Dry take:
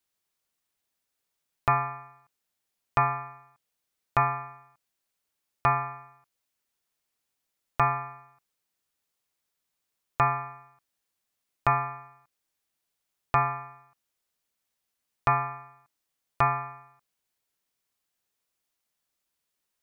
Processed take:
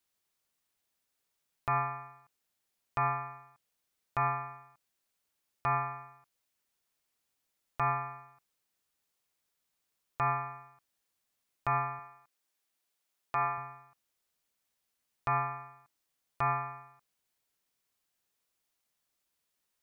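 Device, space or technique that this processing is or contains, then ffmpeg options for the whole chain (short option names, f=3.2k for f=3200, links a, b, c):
stacked limiters: -filter_complex "[0:a]alimiter=limit=-15dB:level=0:latency=1:release=96,alimiter=limit=-19dB:level=0:latency=1:release=362,asettb=1/sr,asplit=3[a][b][c];[a]atrim=end=11.994[d];[b]atrim=start=11.99:end=13.58,asetpts=PTS-STARTPTS,afade=t=in:d=0.004:c=qsin,afade=t=out:st=1.586:d=0.004:c=qsin,highpass=f=270:p=1[e];[c]atrim=start=13.576[f];[d][e]acrossfade=d=0.004:c1=hsin:c2=qsin[g];[g][f]acrossfade=d=0.004:c1=qsin:c2=hsin"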